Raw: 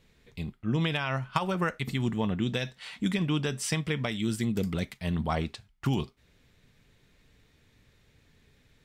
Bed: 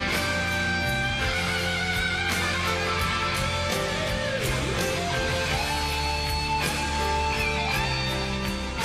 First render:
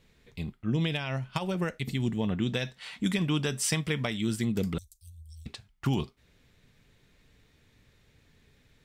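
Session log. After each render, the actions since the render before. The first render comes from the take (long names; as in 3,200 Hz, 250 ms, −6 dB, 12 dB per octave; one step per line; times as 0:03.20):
0:00.70–0:02.28: parametric band 1,200 Hz −9 dB 1.1 octaves
0:03.04–0:04.07: high-shelf EQ 5,500 Hz +6.5 dB
0:04.78–0:05.46: inverse Chebyshev band-stop filter 240–1,800 Hz, stop band 70 dB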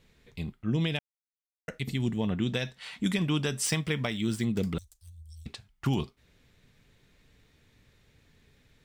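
0:00.99–0:01.68: silence
0:03.66–0:05.28: running median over 3 samples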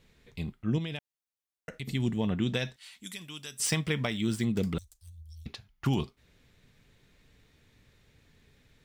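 0:00.78–0:01.89: downward compressor 2 to 1, threshold −37 dBFS
0:02.76–0:03.60: first-order pre-emphasis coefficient 0.9
0:05.16–0:05.85: parametric band 8,200 Hz −15 dB 0.21 octaves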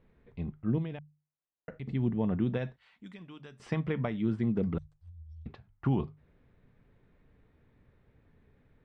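low-pass filter 1,300 Hz 12 dB per octave
mains-hum notches 50/100/150 Hz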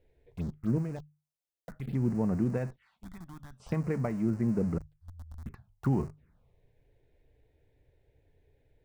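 in parallel at −11 dB: comparator with hysteresis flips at −44 dBFS
on the sum: phaser swept by the level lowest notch 190 Hz, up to 3,400 Hz, full sweep at −29.5 dBFS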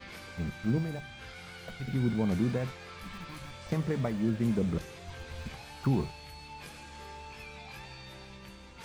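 mix in bed −20.5 dB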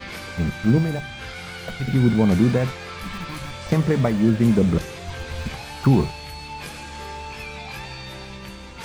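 level +11.5 dB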